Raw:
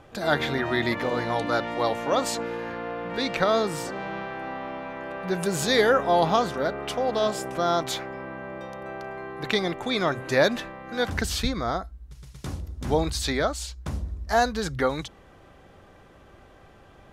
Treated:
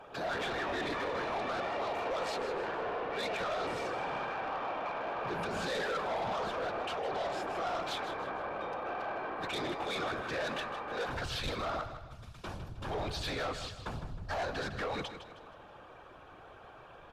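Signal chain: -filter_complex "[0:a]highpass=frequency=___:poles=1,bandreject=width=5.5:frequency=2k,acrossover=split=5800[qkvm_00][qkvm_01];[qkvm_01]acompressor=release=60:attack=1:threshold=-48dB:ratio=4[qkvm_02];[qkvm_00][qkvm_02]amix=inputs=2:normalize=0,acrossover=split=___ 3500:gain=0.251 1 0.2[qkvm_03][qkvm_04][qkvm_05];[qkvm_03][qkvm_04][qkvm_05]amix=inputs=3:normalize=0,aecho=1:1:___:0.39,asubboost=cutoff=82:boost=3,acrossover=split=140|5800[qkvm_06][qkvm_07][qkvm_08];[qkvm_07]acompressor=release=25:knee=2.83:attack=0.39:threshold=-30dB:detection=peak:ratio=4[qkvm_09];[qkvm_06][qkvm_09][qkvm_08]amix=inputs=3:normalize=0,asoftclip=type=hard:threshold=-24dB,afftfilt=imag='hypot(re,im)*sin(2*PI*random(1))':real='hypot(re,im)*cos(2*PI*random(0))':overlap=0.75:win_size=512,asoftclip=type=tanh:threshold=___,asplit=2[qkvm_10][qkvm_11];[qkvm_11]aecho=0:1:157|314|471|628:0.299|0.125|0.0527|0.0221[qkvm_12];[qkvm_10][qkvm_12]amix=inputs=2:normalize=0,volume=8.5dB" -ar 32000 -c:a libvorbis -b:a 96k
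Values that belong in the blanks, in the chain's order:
47, 440, 6, -39.5dB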